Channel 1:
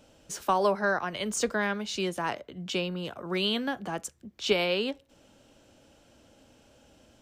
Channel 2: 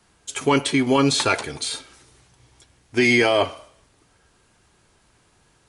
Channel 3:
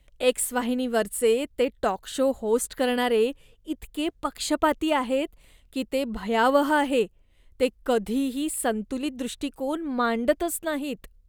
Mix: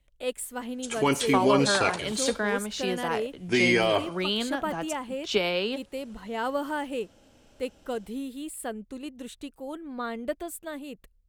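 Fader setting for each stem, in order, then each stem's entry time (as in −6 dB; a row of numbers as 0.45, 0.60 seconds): 0.0, −5.5, −9.0 decibels; 0.85, 0.55, 0.00 seconds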